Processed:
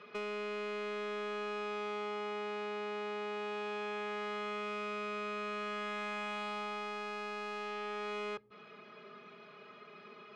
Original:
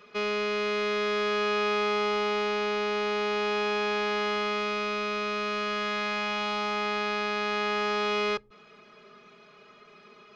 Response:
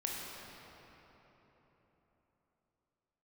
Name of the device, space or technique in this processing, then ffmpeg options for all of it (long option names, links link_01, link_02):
AM radio: -af "highpass=110,lowpass=3600,acompressor=threshold=-36dB:ratio=4,asoftclip=type=tanh:threshold=-31.5dB"